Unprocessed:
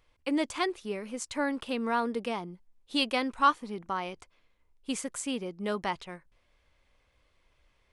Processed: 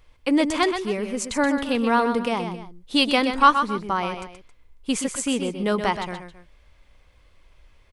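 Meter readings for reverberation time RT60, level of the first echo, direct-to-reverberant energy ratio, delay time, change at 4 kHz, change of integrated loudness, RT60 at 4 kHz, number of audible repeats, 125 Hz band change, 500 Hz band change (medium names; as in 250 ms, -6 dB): no reverb, -8.0 dB, no reverb, 126 ms, +8.5 dB, +9.0 dB, no reverb, 2, +10.5 dB, +9.0 dB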